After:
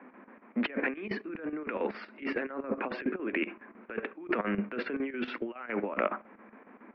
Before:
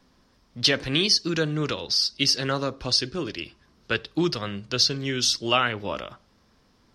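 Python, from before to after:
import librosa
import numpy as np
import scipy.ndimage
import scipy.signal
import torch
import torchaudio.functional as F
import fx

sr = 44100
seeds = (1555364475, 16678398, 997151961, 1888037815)

y = scipy.signal.sosfilt(scipy.signal.cheby1(5, 1.0, [210.0, 2400.0], 'bandpass', fs=sr, output='sos'), x)
y = fx.over_compress(y, sr, threshold_db=-39.0, ratio=-1.0)
y = fx.chopper(y, sr, hz=7.2, depth_pct=65, duty_pct=75)
y = F.gain(torch.from_numpy(y), 5.0).numpy()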